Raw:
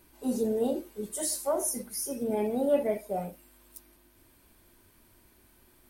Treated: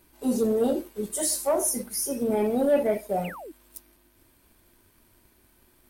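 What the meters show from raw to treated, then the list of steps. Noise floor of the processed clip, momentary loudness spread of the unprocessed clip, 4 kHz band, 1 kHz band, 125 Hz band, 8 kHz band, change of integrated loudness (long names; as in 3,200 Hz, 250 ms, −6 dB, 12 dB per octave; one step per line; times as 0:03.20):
−62 dBFS, 9 LU, +5.0 dB, +4.5 dB, +5.0 dB, +5.0 dB, +4.5 dB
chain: leveller curve on the samples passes 1
sound drawn into the spectrogram fall, 0:03.24–0:03.52, 280–3,100 Hz −42 dBFS
level +1.5 dB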